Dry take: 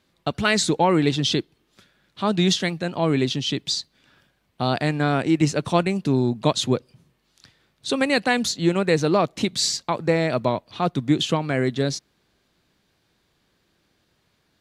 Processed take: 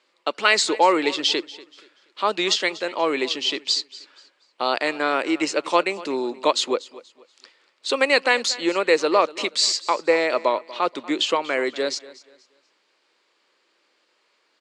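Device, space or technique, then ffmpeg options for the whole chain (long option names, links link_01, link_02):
phone speaker on a table: -af "highpass=frequency=410:width=0.5412,highpass=frequency=410:width=1.3066,equalizer=frequency=420:width_type=q:width=4:gain=-4,equalizer=frequency=710:width_type=q:width=4:gain=-9,equalizer=frequency=1600:width_type=q:width=4:gain=-5,equalizer=frequency=3600:width_type=q:width=4:gain=-6,equalizer=frequency=6000:width_type=q:width=4:gain=-7,lowpass=frequency=7300:width=0.5412,lowpass=frequency=7300:width=1.3066,aecho=1:1:239|478|717:0.112|0.0337|0.0101,volume=6.5dB"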